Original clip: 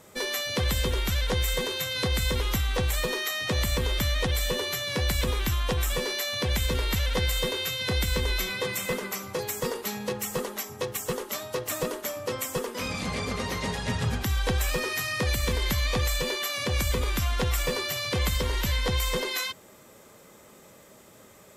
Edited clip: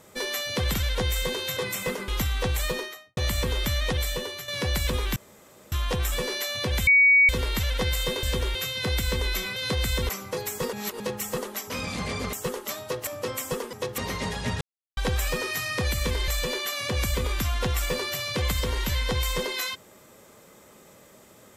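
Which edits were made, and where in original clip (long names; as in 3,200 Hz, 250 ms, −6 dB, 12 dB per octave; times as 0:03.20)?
0:00.74–0:01.06: move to 0:07.59
0:01.89–0:02.42: swap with 0:08.60–0:09.11
0:03.02–0:03.51: fade out and dull
0:04.31–0:04.82: fade out, to −9.5 dB
0:05.50: splice in room tone 0.56 s
0:06.65: insert tone 2,250 Hz −13.5 dBFS 0.42 s
0:09.75–0:10.02: reverse
0:10.72–0:10.97: swap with 0:12.77–0:13.40
0:11.71–0:12.11: remove
0:14.03–0:14.39: silence
0:15.70–0:16.05: remove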